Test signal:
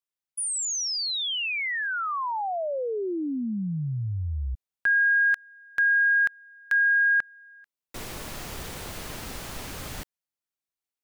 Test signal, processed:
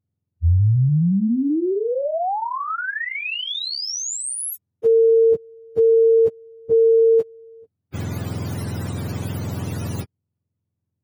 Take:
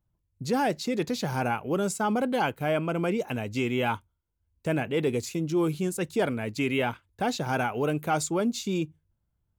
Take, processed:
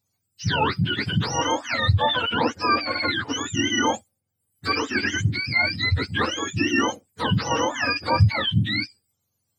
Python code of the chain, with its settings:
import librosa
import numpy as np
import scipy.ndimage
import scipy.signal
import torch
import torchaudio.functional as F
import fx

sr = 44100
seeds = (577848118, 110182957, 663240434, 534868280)

y = fx.octave_mirror(x, sr, pivot_hz=860.0)
y = y * 10.0 ** (7.0 / 20.0)